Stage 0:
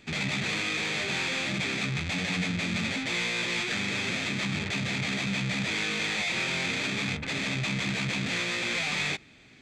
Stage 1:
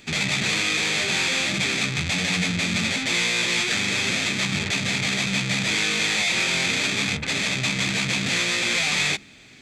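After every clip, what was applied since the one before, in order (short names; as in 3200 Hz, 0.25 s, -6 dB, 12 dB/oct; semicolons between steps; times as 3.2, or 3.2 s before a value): high shelf 4600 Hz +10 dB; de-hum 67.36 Hz, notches 5; gain +4.5 dB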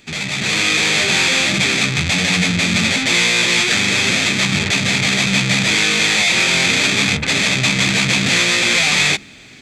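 AGC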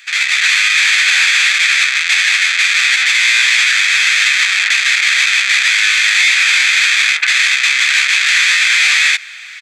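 ladder high-pass 1400 Hz, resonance 50%; outdoor echo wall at 93 m, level -29 dB; maximiser +16.5 dB; gain -1 dB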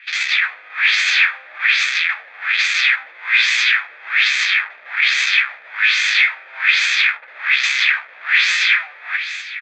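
air absorption 130 m; feedback echo 0.252 s, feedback 49%, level -12 dB; LFO low-pass sine 1.2 Hz 520–7200 Hz; gain -5 dB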